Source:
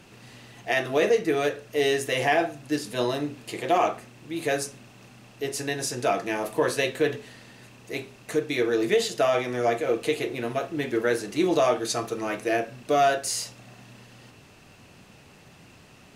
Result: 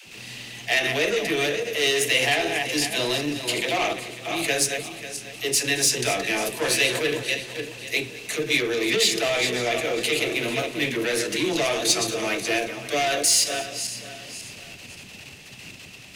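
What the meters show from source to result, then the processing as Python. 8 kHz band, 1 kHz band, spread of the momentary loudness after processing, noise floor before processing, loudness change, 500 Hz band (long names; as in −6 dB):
+11.0 dB, −2.5 dB, 16 LU, −52 dBFS, +3.0 dB, −1.5 dB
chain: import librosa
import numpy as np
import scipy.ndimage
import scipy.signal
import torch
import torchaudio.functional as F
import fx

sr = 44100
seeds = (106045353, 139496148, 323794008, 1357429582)

p1 = fx.reverse_delay_fb(x, sr, ms=272, feedback_pct=51, wet_db=-9.5)
p2 = fx.level_steps(p1, sr, step_db=17)
p3 = p1 + (p2 * librosa.db_to_amplitude(0.5))
p4 = 10.0 ** (-18.5 / 20.0) * np.tanh(p3 / 10.0 ** (-18.5 / 20.0))
p5 = fx.high_shelf_res(p4, sr, hz=1800.0, db=8.5, q=1.5)
p6 = fx.dispersion(p5, sr, late='lows', ms=68.0, hz=340.0)
p7 = p6 + fx.echo_single(p6, sr, ms=220, db=-18.5, dry=0)
y = p7 * librosa.db_to_amplitude(-1.0)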